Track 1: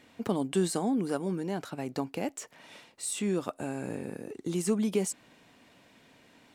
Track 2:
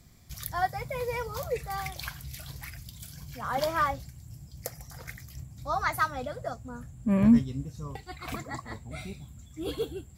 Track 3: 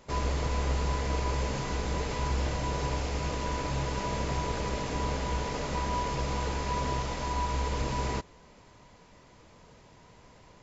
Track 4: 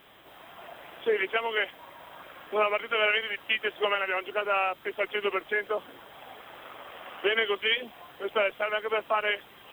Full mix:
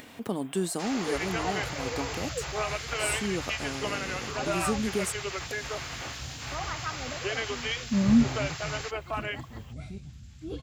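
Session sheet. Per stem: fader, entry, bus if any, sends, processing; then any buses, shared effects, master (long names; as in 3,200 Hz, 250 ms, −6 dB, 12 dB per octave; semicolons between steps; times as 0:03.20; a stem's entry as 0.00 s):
−2.0 dB, 0.00 s, no send, high-shelf EQ 11,000 Hz +9.5 dB; upward compression, threshold −36 dBFS
−10.0 dB, 0.85 s, no send, treble cut that deepens with the level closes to 2,300 Hz, closed at −23.5 dBFS; low-shelf EQ 450 Hz +11.5 dB
+3.0 dB, 0.70 s, no send, gate on every frequency bin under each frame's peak −20 dB weak; Butterworth high-pass 250 Hz 48 dB per octave
−7.0 dB, 0.00 s, no send, no processing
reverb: not used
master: no processing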